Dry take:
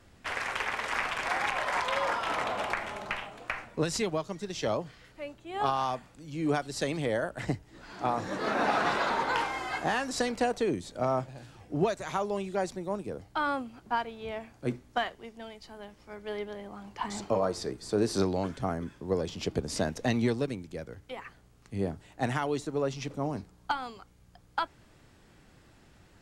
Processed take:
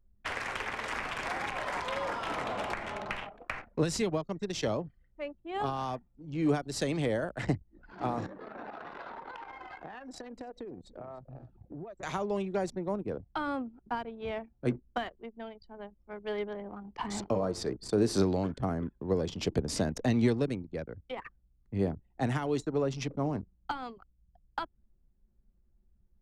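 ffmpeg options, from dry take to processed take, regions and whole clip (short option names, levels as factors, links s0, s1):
-filter_complex "[0:a]asettb=1/sr,asplit=3[s0][s1][s2];[s0]atrim=end=8.264[s3];[s1]atrim=start=8.26:end=12.03,asetpts=PTS-STARTPTS,afade=t=in:d=0.004:c=qsin,afade=t=out:st=3.766:d=0.004:c=qsin,acompressor=threshold=0.00794:ratio=6:attack=3.2:release=140:knee=1:detection=peak,aecho=1:1:298:0.282,atrim=end_sample=166257[s4];[s2]atrim=start=12.026[s5];[s3][s4]acrossfade=d=0.004:c1=hsin:c2=qsin[s6];[s6][s5]acrossfade=d=0.004:c1=qsin:c2=hsin,anlmdn=0.158,acrossover=split=430[s7][s8];[s8]acompressor=threshold=0.0178:ratio=6[s9];[s7][s9]amix=inputs=2:normalize=0,volume=1.26"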